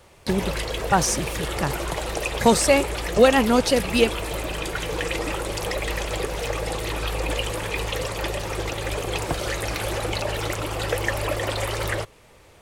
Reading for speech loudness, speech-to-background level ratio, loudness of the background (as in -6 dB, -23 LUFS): -21.0 LUFS, 6.5 dB, -27.5 LUFS